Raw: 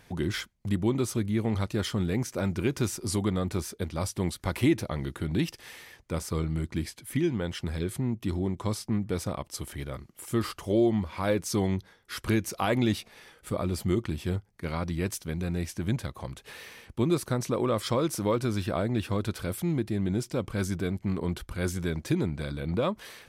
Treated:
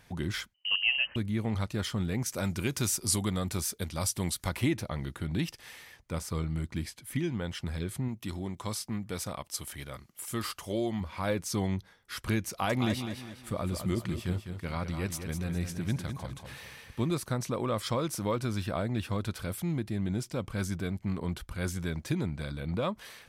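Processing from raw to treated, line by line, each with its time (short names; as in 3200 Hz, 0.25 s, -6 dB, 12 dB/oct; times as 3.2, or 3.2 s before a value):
0.54–1.16 inverted band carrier 3000 Hz
2.26–4.49 high shelf 3900 Hz +10.5 dB
8.08–11.01 tilt +1.5 dB/oct
12.49–17.18 feedback echo 0.204 s, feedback 38%, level -8 dB
whole clip: bell 370 Hz -5 dB 0.93 oct; gain -2 dB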